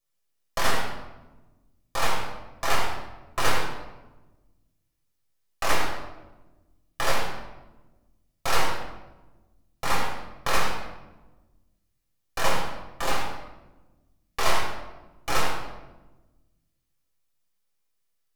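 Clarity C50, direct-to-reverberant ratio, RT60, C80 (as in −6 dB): 2.5 dB, −4.5 dB, 1.1 s, 4.5 dB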